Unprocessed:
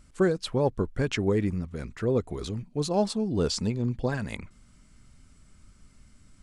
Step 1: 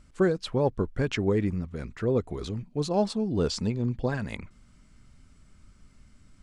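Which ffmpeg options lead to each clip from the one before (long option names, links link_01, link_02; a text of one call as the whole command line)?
ffmpeg -i in.wav -af "highshelf=frequency=8700:gain=-11" out.wav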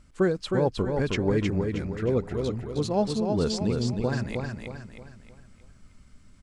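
ffmpeg -i in.wav -af "aecho=1:1:314|628|942|1256|1570:0.596|0.244|0.1|0.0411|0.0168" out.wav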